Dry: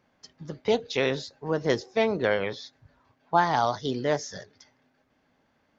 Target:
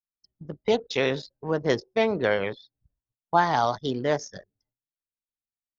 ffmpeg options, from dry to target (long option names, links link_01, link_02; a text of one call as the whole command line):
ffmpeg -i in.wav -af "agate=range=-33dB:threshold=-55dB:ratio=3:detection=peak,anlmdn=1.58,volume=1dB" out.wav